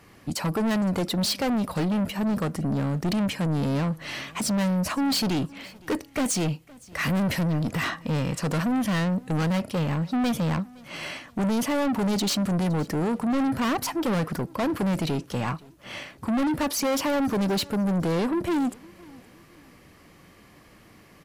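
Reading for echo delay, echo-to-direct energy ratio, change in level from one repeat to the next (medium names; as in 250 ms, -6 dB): 515 ms, -23.0 dB, -9.0 dB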